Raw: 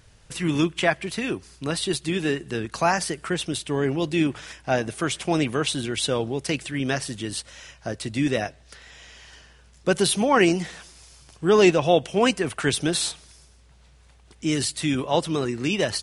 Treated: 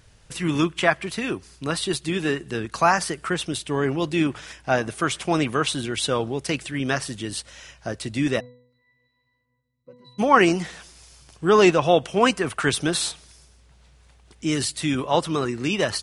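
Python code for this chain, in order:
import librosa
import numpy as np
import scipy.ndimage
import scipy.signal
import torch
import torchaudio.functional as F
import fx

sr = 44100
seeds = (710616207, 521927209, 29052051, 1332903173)

y = fx.octave_resonator(x, sr, note='B', decay_s=0.65, at=(8.39, 10.18), fade=0.02)
y = fx.dynamic_eq(y, sr, hz=1200.0, q=1.8, threshold_db=-40.0, ratio=4.0, max_db=7)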